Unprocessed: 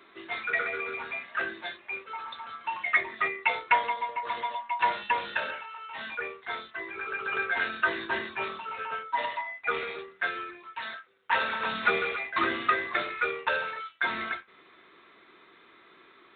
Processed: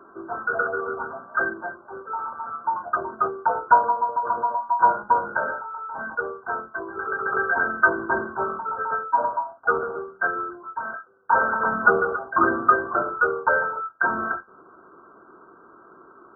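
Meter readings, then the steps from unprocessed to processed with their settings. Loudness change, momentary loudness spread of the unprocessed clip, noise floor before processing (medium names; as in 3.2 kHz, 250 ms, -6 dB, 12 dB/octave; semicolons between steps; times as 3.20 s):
+6.5 dB, 11 LU, -57 dBFS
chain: brick-wall FIR low-pass 1.6 kHz; trim +9 dB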